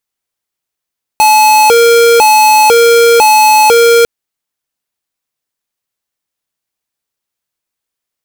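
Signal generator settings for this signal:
siren hi-lo 467–859 Hz 1 per second square −5.5 dBFS 2.85 s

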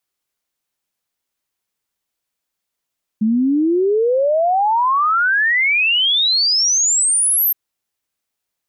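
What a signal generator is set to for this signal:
exponential sine sweep 210 Hz → 13,000 Hz 4.32 s −12.5 dBFS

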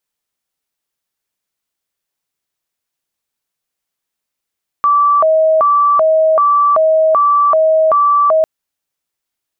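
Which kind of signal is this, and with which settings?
siren hi-lo 635–1,160 Hz 1.3 per second sine −7.5 dBFS 3.60 s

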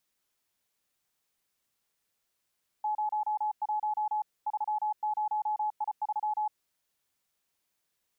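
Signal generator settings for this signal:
Morse code "01 30I3" 34 words per minute 850 Hz −27 dBFS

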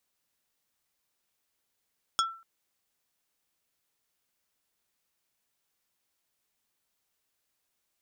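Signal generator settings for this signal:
struck wood plate, length 0.24 s, lowest mode 1,340 Hz, decay 0.41 s, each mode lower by 2 dB, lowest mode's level −21.5 dB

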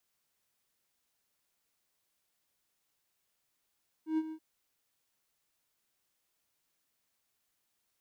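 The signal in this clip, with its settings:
note with an ADSR envelope triangle 316 Hz, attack 118 ms, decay 45 ms, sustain −12.5 dB, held 0.26 s, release 70 ms −24 dBFS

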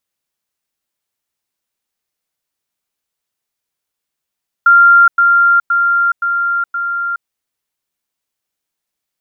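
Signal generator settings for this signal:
level staircase 1,390 Hz −3.5 dBFS, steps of −3 dB, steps 5, 0.42 s 0.10 s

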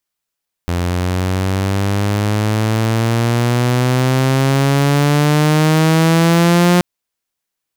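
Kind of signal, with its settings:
pitch glide with a swell saw, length 6.13 s, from 86.5 Hz, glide +12.5 semitones, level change +7 dB, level −6 dB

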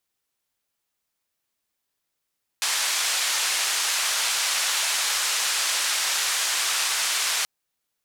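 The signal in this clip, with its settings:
band-limited noise 990–8,000 Hz, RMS −24.5 dBFS 4.83 s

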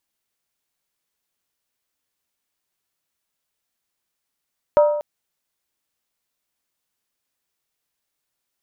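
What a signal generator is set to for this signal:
struck skin length 0.24 s, lowest mode 593 Hz, decay 0.88 s, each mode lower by 9 dB, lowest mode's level −8.5 dB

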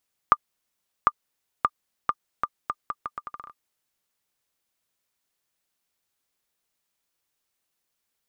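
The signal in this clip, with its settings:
bouncing ball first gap 0.75 s, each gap 0.77, 1,200 Hz, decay 48 ms −3.5 dBFS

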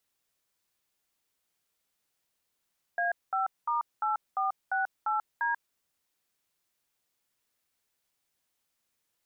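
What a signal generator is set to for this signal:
touch tones "A5*8468D", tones 138 ms, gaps 209 ms, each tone −28.5 dBFS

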